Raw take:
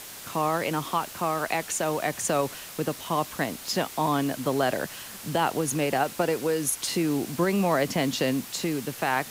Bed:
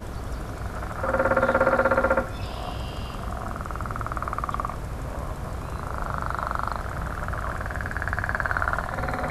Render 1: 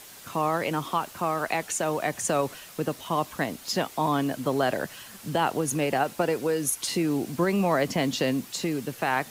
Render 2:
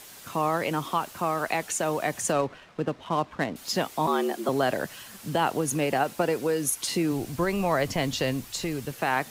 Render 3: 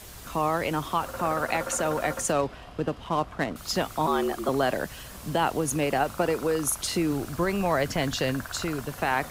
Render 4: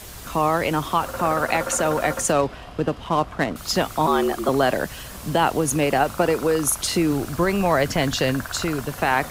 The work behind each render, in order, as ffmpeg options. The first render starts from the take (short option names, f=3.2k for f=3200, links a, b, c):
-af "afftdn=nr=6:nf=-42"
-filter_complex "[0:a]asettb=1/sr,asplit=3[a][b][c];[a]atrim=end=2.324[d];[b]atrim=start=2.32:end=3.56,asetpts=PTS-STARTPTS,afade=t=in:d=0.004:c=qsin,afade=t=out:st=1.236:d=0.004:c=qsin,adynamicsmooth=sensitivity=6.5:basefreq=1.9k[e];[c]atrim=start=3.556[f];[d][e]acrossfade=d=0.004:c1=hsin:c2=qsin[g];[g][f]acrossfade=d=0.004:c1=qsin:c2=hsin,asettb=1/sr,asplit=3[h][i][j];[h]atrim=end=4.074[k];[i]atrim=start=4.07:end=4.49,asetpts=PTS-STARTPTS,afade=t=in:d=0.004:c=qsin,afade=t=out:st=0.416:d=0.004:c=qsin,afreqshift=90[l];[j]atrim=start=4.486[m];[k][l]acrossfade=d=0.004:c1=hsin:c2=qsin[n];[n][m]acrossfade=d=0.004:c1=qsin:c2=hsin,asplit=3[o][p][q];[o]afade=t=out:st=7.11:d=0.02[r];[p]asubboost=boost=9:cutoff=69,afade=t=in:st=7.11:d=0.02,afade=t=out:st=8.91:d=0.02[s];[q]afade=t=in:st=8.91:d=0.02[t];[r][s][t]amix=inputs=3:normalize=0"
-filter_complex "[1:a]volume=-14dB[a];[0:a][a]amix=inputs=2:normalize=0"
-af "volume=5.5dB"